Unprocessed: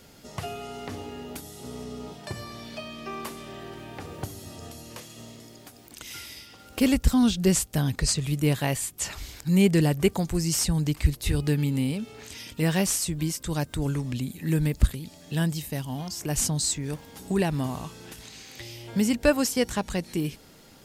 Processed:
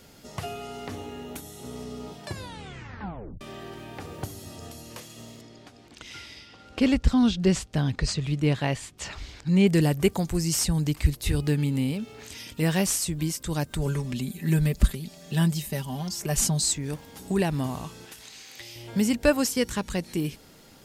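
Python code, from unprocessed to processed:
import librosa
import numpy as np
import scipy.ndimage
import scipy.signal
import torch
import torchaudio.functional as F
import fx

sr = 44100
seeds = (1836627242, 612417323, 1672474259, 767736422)

y = fx.notch(x, sr, hz=4800.0, q=7.8, at=(0.92, 1.76))
y = fx.lowpass(y, sr, hz=4800.0, slope=12, at=(5.41, 9.67))
y = fx.resample_linear(y, sr, factor=2, at=(11.47, 12.21))
y = fx.comb(y, sr, ms=5.1, depth=0.65, at=(13.7, 16.73))
y = fx.low_shelf(y, sr, hz=410.0, db=-10.5, at=(18.05, 18.76))
y = fx.peak_eq(y, sr, hz=710.0, db=-10.0, octaves=0.38, at=(19.52, 19.95))
y = fx.edit(y, sr, fx.tape_stop(start_s=2.27, length_s=1.14), tone=tone)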